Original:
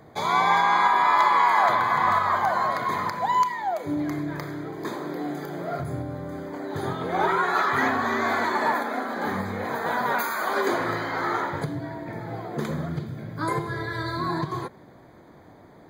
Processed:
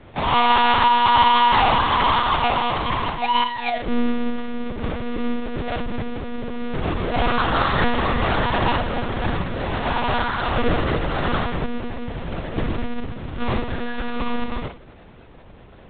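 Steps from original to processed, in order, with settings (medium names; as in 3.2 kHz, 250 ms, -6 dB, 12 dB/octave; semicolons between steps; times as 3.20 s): square wave that keeps the level; dynamic bell 280 Hz, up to +4 dB, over -37 dBFS, Q 2.9; flutter echo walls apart 9.3 m, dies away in 0.34 s; monotone LPC vocoder at 8 kHz 240 Hz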